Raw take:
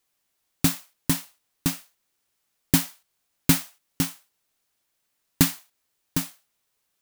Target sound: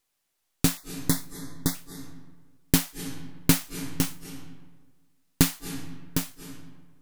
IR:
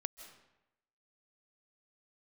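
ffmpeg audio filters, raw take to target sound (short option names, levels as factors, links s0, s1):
-filter_complex "[0:a]aeval=exprs='if(lt(val(0),0),0.447*val(0),val(0))':c=same,asettb=1/sr,asplit=3[s0][s1][s2];[s0]atrim=end=0.774[s3];[s1]atrim=start=0.77:end=1.75,asetpts=PTS-STARTPTS,afade=t=in:d=0.004:c=qsin,afade=t=out:st=0.976:d=0.004:c=qsin,asuperstop=centerf=2700:order=20:qfactor=2.3[s4];[s2]atrim=start=1.746[s5];[s3][s4]acrossfade=d=0.004:c1=hsin:c2=qsin[s6];[s6][s5]acrossfade=d=0.004:c1=qsin:c2=hsin,asplit=2[s7][s8];[1:a]atrim=start_sample=2205,asetrate=27783,aresample=44100[s9];[s8][s9]afir=irnorm=-1:irlink=0,volume=2.37[s10];[s7][s10]amix=inputs=2:normalize=0,volume=0.335"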